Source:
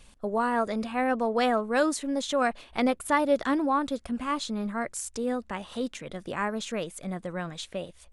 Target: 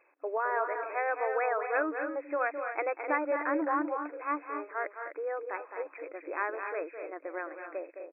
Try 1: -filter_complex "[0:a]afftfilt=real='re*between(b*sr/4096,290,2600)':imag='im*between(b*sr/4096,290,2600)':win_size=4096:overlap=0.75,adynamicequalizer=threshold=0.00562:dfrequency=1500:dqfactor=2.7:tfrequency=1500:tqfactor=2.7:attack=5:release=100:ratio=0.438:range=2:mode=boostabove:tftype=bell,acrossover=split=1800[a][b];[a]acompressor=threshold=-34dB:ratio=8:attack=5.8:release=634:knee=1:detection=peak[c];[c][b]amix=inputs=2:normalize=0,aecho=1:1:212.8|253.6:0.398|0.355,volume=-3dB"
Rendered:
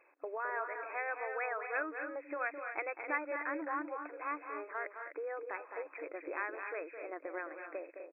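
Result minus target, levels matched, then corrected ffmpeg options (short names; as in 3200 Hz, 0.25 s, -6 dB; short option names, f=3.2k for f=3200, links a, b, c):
compressor: peak gain reduction +10 dB
-filter_complex "[0:a]afftfilt=real='re*between(b*sr/4096,290,2600)':imag='im*between(b*sr/4096,290,2600)':win_size=4096:overlap=0.75,adynamicequalizer=threshold=0.00562:dfrequency=1500:dqfactor=2.7:tfrequency=1500:tqfactor=2.7:attack=5:release=100:ratio=0.438:range=2:mode=boostabove:tftype=bell,acrossover=split=1800[a][b];[a]acompressor=threshold=-22.5dB:ratio=8:attack=5.8:release=634:knee=1:detection=peak[c];[c][b]amix=inputs=2:normalize=0,aecho=1:1:212.8|253.6:0.398|0.355,volume=-3dB"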